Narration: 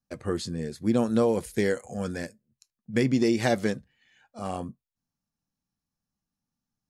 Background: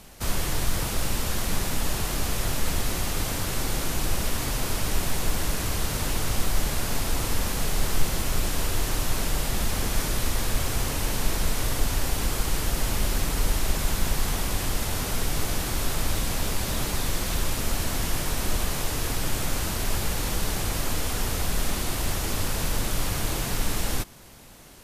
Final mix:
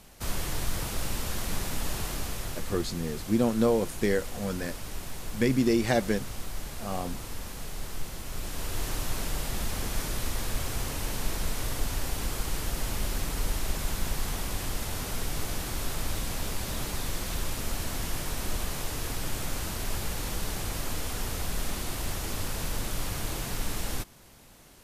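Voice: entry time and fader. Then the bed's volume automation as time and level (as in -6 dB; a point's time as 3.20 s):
2.45 s, -1.0 dB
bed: 2.06 s -5 dB
2.85 s -12 dB
8.22 s -12 dB
8.84 s -5.5 dB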